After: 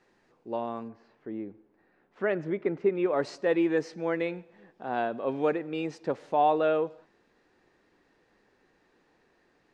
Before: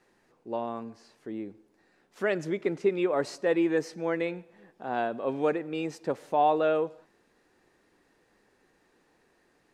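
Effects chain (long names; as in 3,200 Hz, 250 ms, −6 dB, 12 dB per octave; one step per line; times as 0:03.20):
low-pass filter 6,400 Hz 12 dB per octave, from 0:00.88 2,100 Hz, from 0:03.06 5,400 Hz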